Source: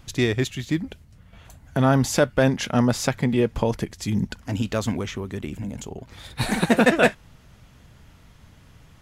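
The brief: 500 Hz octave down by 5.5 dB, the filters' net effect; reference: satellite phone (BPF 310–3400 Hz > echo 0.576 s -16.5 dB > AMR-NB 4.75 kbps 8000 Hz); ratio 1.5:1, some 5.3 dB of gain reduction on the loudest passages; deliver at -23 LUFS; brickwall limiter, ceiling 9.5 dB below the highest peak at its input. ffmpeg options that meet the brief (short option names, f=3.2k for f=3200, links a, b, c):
-af "equalizer=f=500:t=o:g=-6,acompressor=threshold=-29dB:ratio=1.5,alimiter=limit=-20dB:level=0:latency=1,highpass=310,lowpass=3.4k,aecho=1:1:576:0.15,volume=16dB" -ar 8000 -c:a libopencore_amrnb -b:a 4750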